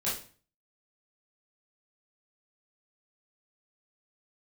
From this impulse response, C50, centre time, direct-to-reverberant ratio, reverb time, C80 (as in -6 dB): 5.0 dB, 39 ms, -9.5 dB, 0.40 s, 11.5 dB